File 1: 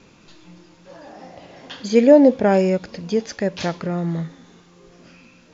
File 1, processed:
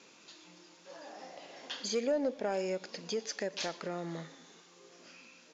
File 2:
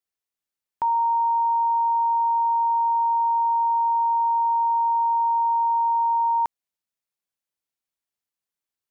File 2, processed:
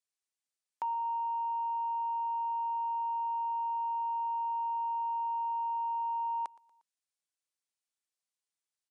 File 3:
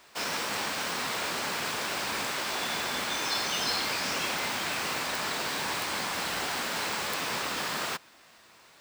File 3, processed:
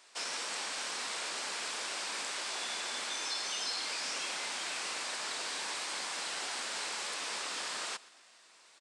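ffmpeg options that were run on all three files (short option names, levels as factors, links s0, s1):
-af "highpass=320,highshelf=f=3400:g=9,acompressor=threshold=0.0447:ratio=2,asoftclip=type=tanh:threshold=0.188,aecho=1:1:118|236|354:0.0841|0.0404|0.0194,aresample=22050,aresample=44100,volume=0.422"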